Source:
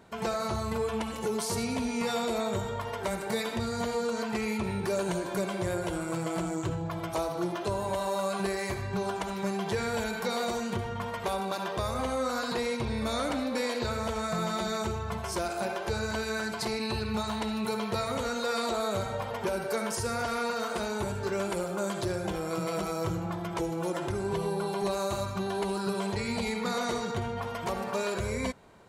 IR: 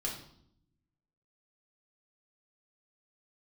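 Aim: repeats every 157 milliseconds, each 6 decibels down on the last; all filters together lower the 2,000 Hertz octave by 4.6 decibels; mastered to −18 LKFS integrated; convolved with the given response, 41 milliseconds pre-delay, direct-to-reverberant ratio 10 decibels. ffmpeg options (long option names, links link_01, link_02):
-filter_complex "[0:a]equalizer=frequency=2000:width_type=o:gain=-6.5,aecho=1:1:157|314|471|628|785|942:0.501|0.251|0.125|0.0626|0.0313|0.0157,asplit=2[link_01][link_02];[1:a]atrim=start_sample=2205,adelay=41[link_03];[link_02][link_03]afir=irnorm=-1:irlink=0,volume=-12.5dB[link_04];[link_01][link_04]amix=inputs=2:normalize=0,volume=12.5dB"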